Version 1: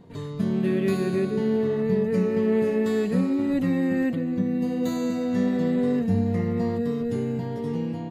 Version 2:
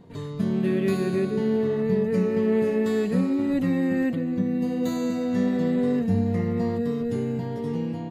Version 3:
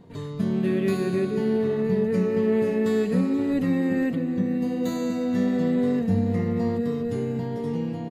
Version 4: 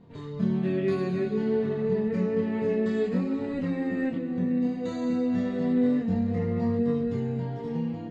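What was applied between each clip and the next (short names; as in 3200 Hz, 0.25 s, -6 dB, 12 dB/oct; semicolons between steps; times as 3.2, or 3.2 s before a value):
nothing audible
feedback echo 0.482 s, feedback 42%, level -16 dB
chorus voices 2, 0.29 Hz, delay 25 ms, depth 3.8 ms; air absorption 100 m; Vorbis 64 kbps 22050 Hz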